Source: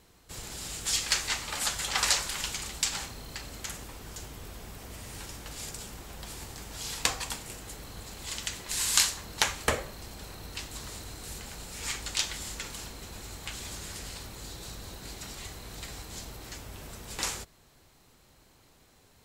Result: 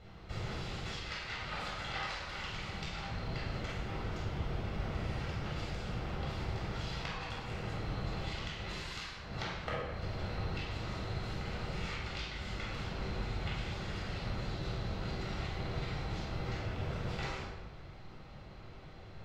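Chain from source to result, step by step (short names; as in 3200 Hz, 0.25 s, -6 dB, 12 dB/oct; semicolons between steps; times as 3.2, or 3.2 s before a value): compressor 5:1, threshold -43 dBFS, peak gain reduction 22 dB; air absorption 250 m; reverb RT60 1.0 s, pre-delay 18 ms, DRR -4 dB; gain +2 dB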